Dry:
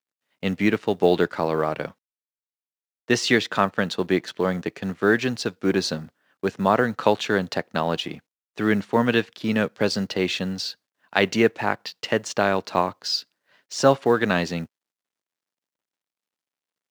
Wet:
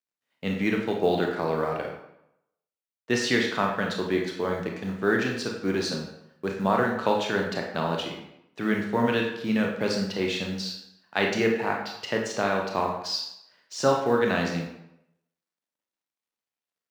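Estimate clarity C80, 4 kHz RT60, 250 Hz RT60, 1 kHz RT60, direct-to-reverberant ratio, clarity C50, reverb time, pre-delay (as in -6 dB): 7.5 dB, 0.60 s, 0.75 s, 0.85 s, 0.5 dB, 4.5 dB, 0.80 s, 23 ms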